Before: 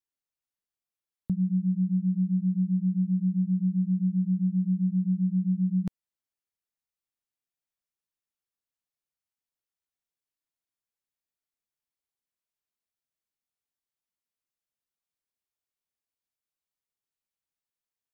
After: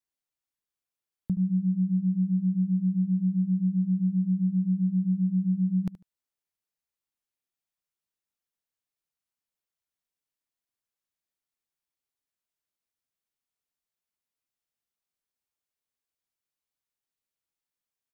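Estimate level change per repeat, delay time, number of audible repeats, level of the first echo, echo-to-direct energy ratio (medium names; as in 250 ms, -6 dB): -13.5 dB, 74 ms, 2, -15.5 dB, -15.5 dB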